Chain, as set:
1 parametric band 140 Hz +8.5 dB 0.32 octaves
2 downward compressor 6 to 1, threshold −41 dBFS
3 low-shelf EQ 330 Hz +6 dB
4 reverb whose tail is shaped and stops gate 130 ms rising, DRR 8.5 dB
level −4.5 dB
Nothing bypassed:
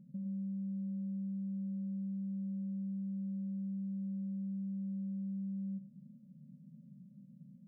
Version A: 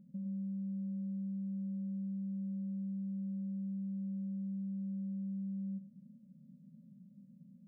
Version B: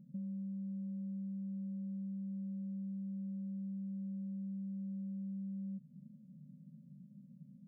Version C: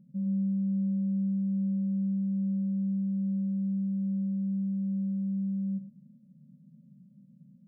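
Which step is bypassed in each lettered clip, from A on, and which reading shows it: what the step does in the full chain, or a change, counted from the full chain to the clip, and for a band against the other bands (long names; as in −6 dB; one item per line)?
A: 1, change in momentary loudness spread +2 LU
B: 4, change in momentary loudness spread −2 LU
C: 2, average gain reduction 7.0 dB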